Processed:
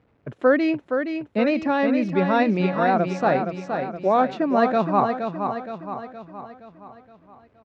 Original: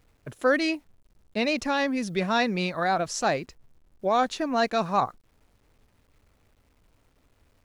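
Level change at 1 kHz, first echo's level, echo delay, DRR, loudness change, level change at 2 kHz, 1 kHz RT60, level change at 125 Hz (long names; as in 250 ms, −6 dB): +4.5 dB, −6.5 dB, 469 ms, no reverb audible, +4.0 dB, +1.0 dB, no reverb audible, +7.0 dB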